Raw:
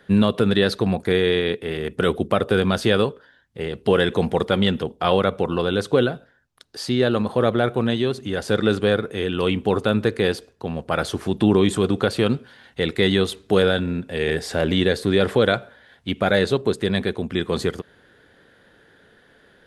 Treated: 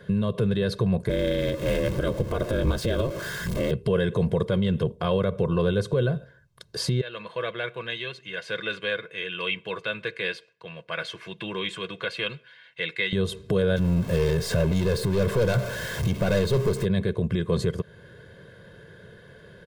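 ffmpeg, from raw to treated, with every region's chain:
ffmpeg -i in.wav -filter_complex "[0:a]asettb=1/sr,asplit=3[link_01][link_02][link_03];[link_01]atrim=end=1.094[link_04];[link_02]atrim=start=1.09:end=3.71,asetpts=PTS-STARTPTS,afade=type=in:duration=0.004:curve=qsin,afade=type=out:start_time=2.616:duration=0.004:curve=qsin,aeval=exprs='val(0)+0.5*0.0422*sgn(val(0))':channel_layout=same,bandreject=frequency=2500:width=27,aeval=exprs='val(0)*sin(2*PI*120*n/s)':channel_layout=same[link_05];[link_03]atrim=start=3.706[link_06];[link_04][link_05]acrossfade=duration=0.004:curve1=hsin:curve2=qsin[link_07];[link_07][link_06]acrossfade=duration=0.004:curve1=qsin:curve2=hsin,asettb=1/sr,asplit=3[link_08][link_09][link_10];[link_08]atrim=end=7.014[link_11];[link_09]atrim=start=7.01:end=13.13,asetpts=PTS-STARTPTS,afade=type=in:duration=0.004:curve=qsin,afade=type=out:start_time=6.116:duration=0.004:curve=qsin,bandpass=frequency=2400:width_type=q:width=2,aecho=1:1:6.1:0.37,atrim=end_sample=269892[link_12];[link_10]atrim=start=13.126[link_13];[link_11][link_12]acrossfade=duration=0.004:curve1=hsin:curve2=qsin[link_14];[link_14][link_13]acrossfade=duration=0.004:curve1=qsin:curve2=hsin,asettb=1/sr,asplit=3[link_15][link_16][link_17];[link_15]atrim=end=13.764[link_18];[link_16]atrim=start=13.76:end=16.85,asetpts=PTS-STARTPTS,afade=type=in:duration=0.004:curve=qsin,afade=type=out:start_time=3.086:duration=0.004:curve=qsin,aeval=exprs='val(0)+0.5*0.0398*sgn(val(0))':channel_layout=same,aeval=exprs='(tanh(10*val(0)+0.55)-tanh(0.55))/10':channel_layout=same[link_19];[link_17]atrim=start=16.846[link_20];[link_18][link_19]acrossfade=duration=0.004:curve1=hsin:curve2=qsin[link_21];[link_21][link_20]acrossfade=duration=0.004:curve1=qsin:curve2=hsin,equalizer=frequency=150:width_type=o:width=2:gain=14,alimiter=limit=-15dB:level=0:latency=1:release=262,aecho=1:1:1.9:0.73" out.wav

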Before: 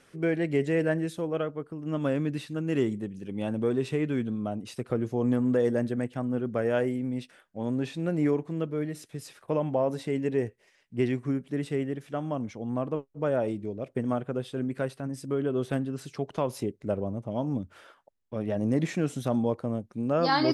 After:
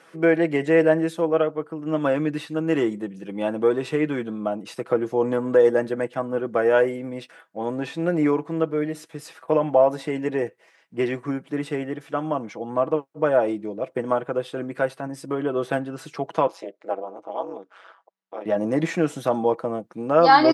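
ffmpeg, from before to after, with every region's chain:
ffmpeg -i in.wav -filter_complex "[0:a]asettb=1/sr,asplit=3[link_01][link_02][link_03];[link_01]atrim=end=16.474[link_04];[link_02]atrim=start=16.47:end=18.46,asetpts=PTS-STARTPTS,afade=type=in:duration=0.004:curve=qsin,afade=type=out:start_time=1.986:duration=0.004:curve=qsin,tremolo=f=190:d=0.974,highpass=460,lowpass=5900[link_05];[link_03]atrim=start=18.456[link_06];[link_04][link_05]acrossfade=duration=0.004:curve1=hsin:curve2=qsin[link_07];[link_07][link_06]acrossfade=duration=0.004:curve1=qsin:curve2=hsin,highpass=190,equalizer=frequency=970:width=0.52:gain=9,aecho=1:1:6.1:0.47,volume=1.5dB" out.wav

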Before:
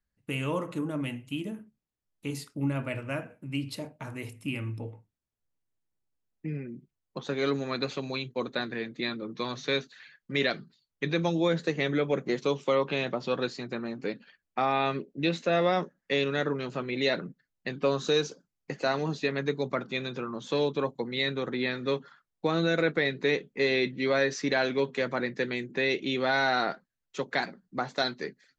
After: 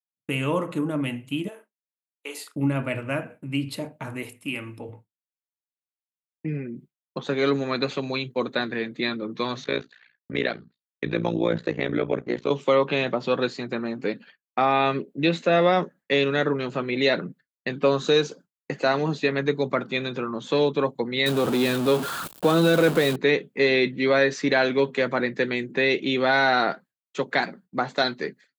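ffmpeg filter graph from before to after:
ffmpeg -i in.wav -filter_complex "[0:a]asettb=1/sr,asplit=3[link_01][link_02][link_03];[link_01]atrim=end=1.484[link_04];[link_02]atrim=start=1.48:end=2.56,asetpts=PTS-STARTPTS,afade=type=in:duration=0.004:curve=qsin,afade=type=out:start_time=1.076:duration=0.004:curve=qsin,highpass=frequency=470:width=0.5412,highpass=frequency=470:width=1.3066,asplit=2[link_05][link_06];[link_06]adelay=38,volume=-8dB[link_07];[link_05][link_07]amix=inputs=2:normalize=0,atrim=end_sample=47628[link_08];[link_03]atrim=start=2.556[link_09];[link_04][link_08]acrossfade=duration=0.004:curve1=hsin:curve2=qsin[link_10];[link_10][link_09]acrossfade=duration=0.004:curve1=qsin:curve2=hsin,asettb=1/sr,asplit=3[link_11][link_12][link_13];[link_11]atrim=end=4.234[link_14];[link_12]atrim=start=4.23:end=4.89,asetpts=PTS-STARTPTS,afade=type=in:duration=0.004:curve=qsin,afade=type=out:start_time=0.656:duration=0.004:curve=qsin,highpass=frequency=370:poles=1,highshelf=frequency=5700:gain=2.5[link_15];[link_13]atrim=start=4.886[link_16];[link_14][link_15]acrossfade=duration=0.004:curve1=hsin:curve2=qsin[link_17];[link_17][link_16]acrossfade=duration=0.004:curve1=qsin:curve2=hsin,asettb=1/sr,asplit=3[link_18][link_19][link_20];[link_18]atrim=end=9.644[link_21];[link_19]atrim=start=9.64:end=12.51,asetpts=PTS-STARTPTS,afade=type=in:duration=0.004:curve=qsin,afade=type=out:start_time=2.866:duration=0.004:curve=qsin,aemphasis=mode=reproduction:type=50fm,tremolo=f=59:d=0.919[link_22];[link_20]atrim=start=12.506[link_23];[link_21][link_22]acrossfade=duration=0.004:curve1=hsin:curve2=qsin[link_24];[link_24][link_23]acrossfade=duration=0.004:curve1=qsin:curve2=hsin,asettb=1/sr,asplit=3[link_25][link_26][link_27];[link_25]atrim=end=21.264[link_28];[link_26]atrim=start=21.26:end=23.16,asetpts=PTS-STARTPTS,afade=type=in:duration=0.004:curve=qsin,afade=type=out:start_time=1.896:duration=0.004:curve=qsin,aeval=exprs='val(0)+0.5*0.0355*sgn(val(0))':channel_layout=same,equalizer=frequency=2000:width=2.8:gain=-10[link_29];[link_27]atrim=start=23.156[link_30];[link_28][link_29]acrossfade=duration=0.004:curve1=hsin:curve2=qsin[link_31];[link_31][link_30]acrossfade=duration=0.004:curve1=qsin:curve2=hsin,highpass=110,agate=range=-33dB:threshold=-49dB:ratio=3:detection=peak,equalizer=frequency=5600:width=2.3:gain=-6.5,volume=6dB" out.wav

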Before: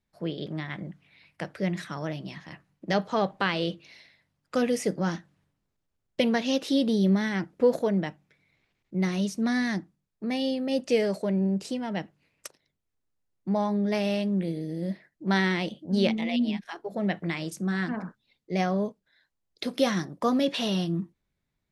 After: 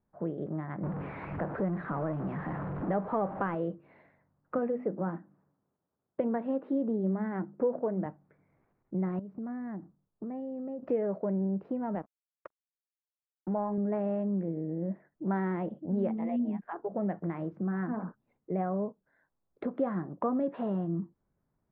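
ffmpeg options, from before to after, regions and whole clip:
ffmpeg -i in.wav -filter_complex "[0:a]asettb=1/sr,asplit=3[link_01][link_02][link_03];[link_01]atrim=end=0.834[link_04];[link_02]atrim=start=0.83:end=3.55,asetpts=PTS-STARTPTS,afade=type=in:duration=0.004:curve=qsin,afade=type=out:start_time=2.716:duration=0.004:curve=qsin,aeval=exprs='val(0)+0.5*0.0316*sgn(val(0))':channel_layout=same,highshelf=frequency=10000:gain=10[link_05];[link_03]atrim=start=3.546[link_06];[link_04][link_05]acrossfade=duration=0.004:curve1=hsin:curve2=qsin[link_07];[link_07][link_06]acrossfade=duration=0.004:curve1=qsin:curve2=hsin,asettb=1/sr,asplit=3[link_08][link_09][link_10];[link_08]atrim=end=4.584[link_11];[link_09]atrim=start=4.58:end=8.06,asetpts=PTS-STARTPTS,afade=type=in:duration=0.004:curve=qsin,afade=type=out:start_time=3.476:duration=0.004:curve=qsin,highpass=130,highshelf=frequency=4600:gain=-7,bandreject=frequency=50:width_type=h:width=6,bandreject=frequency=100:width_type=h:width=6,bandreject=frequency=150:width_type=h:width=6,bandreject=frequency=200:width_type=h:width=6,bandreject=frequency=250:width_type=h:width=6,bandreject=frequency=300:width_type=h:width=6,bandreject=frequency=350:width_type=h:width=6[link_12];[link_10]atrim=start=8.056[link_13];[link_11][link_12]acrossfade=duration=0.004:curve1=hsin:curve2=qsin[link_14];[link_14][link_13]acrossfade=duration=0.004:curve1=qsin:curve2=hsin,asettb=1/sr,asplit=3[link_15][link_16][link_17];[link_15]atrim=end=9.194[link_18];[link_16]atrim=start=9.19:end=10.83,asetpts=PTS-STARTPTS,afade=type=in:duration=0.004:curve=qsin,afade=type=out:start_time=1.636:duration=0.004:curve=qsin,acompressor=threshold=-39dB:ratio=6:attack=3.2:release=140:knee=1:detection=peak,highshelf=frequency=2300:gain=-9.5[link_19];[link_17]atrim=start=10.826[link_20];[link_18][link_19]acrossfade=duration=0.004:curve1=hsin:curve2=qsin[link_21];[link_21][link_20]acrossfade=duration=0.004:curve1=qsin:curve2=hsin,asettb=1/sr,asplit=3[link_22][link_23][link_24];[link_22]atrim=end=11.954[link_25];[link_23]atrim=start=11.95:end=13.78,asetpts=PTS-STARTPTS,afade=type=in:duration=0.004:curve=qsin,afade=type=out:start_time=1.826:duration=0.004:curve=qsin,highpass=frequency=140:poles=1,aeval=exprs='sgn(val(0))*max(abs(val(0))-0.00531,0)':channel_layout=same[link_26];[link_24]atrim=start=13.776[link_27];[link_25][link_26]acrossfade=duration=0.004:curve1=hsin:curve2=qsin[link_28];[link_28][link_27]acrossfade=duration=0.004:curve1=qsin:curve2=hsin,lowpass=frequency=1300:width=0.5412,lowpass=frequency=1300:width=1.3066,lowshelf=frequency=93:gain=-7,acompressor=threshold=-41dB:ratio=2,volume=5.5dB" out.wav

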